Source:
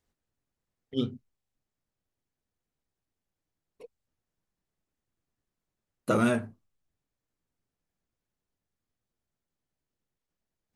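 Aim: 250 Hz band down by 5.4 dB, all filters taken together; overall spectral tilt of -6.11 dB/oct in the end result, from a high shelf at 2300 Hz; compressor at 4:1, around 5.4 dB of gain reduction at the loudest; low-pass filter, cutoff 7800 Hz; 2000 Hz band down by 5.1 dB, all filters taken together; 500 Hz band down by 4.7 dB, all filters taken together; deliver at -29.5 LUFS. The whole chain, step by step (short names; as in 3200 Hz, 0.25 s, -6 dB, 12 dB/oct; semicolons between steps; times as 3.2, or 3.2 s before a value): LPF 7800 Hz; bell 250 Hz -5 dB; bell 500 Hz -4 dB; bell 2000 Hz -4 dB; high shelf 2300 Hz -7 dB; compressor 4:1, threshold -31 dBFS; gain +9.5 dB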